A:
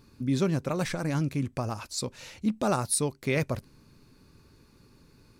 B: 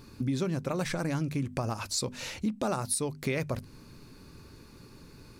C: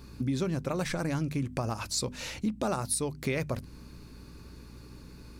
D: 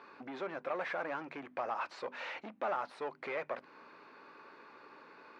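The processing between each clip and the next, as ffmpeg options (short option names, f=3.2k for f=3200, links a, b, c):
-af "bandreject=f=50:t=h:w=6,bandreject=f=100:t=h:w=6,bandreject=f=150:t=h:w=6,bandreject=f=200:t=h:w=6,bandreject=f=250:t=h:w=6,acompressor=threshold=-36dB:ratio=4,volume=7dB"
-af "aeval=exprs='val(0)+0.00355*(sin(2*PI*60*n/s)+sin(2*PI*2*60*n/s)/2+sin(2*PI*3*60*n/s)/3+sin(2*PI*4*60*n/s)/4+sin(2*PI*5*60*n/s)/5)':c=same"
-filter_complex "[0:a]asplit=2[a][b];[b]highpass=f=720:p=1,volume=22dB,asoftclip=type=tanh:threshold=-17.5dB[c];[a][c]amix=inputs=2:normalize=0,lowpass=f=1.3k:p=1,volume=-6dB,highpass=640,lowpass=2.2k,volume=-4.5dB"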